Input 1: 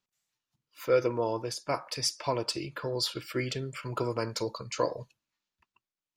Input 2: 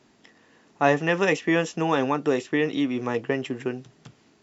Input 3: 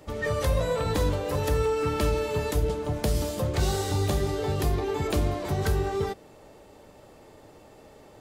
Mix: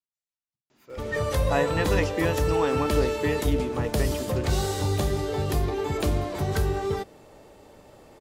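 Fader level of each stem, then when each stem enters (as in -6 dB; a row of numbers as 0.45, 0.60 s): -17.5, -5.5, +0.5 dB; 0.00, 0.70, 0.90 s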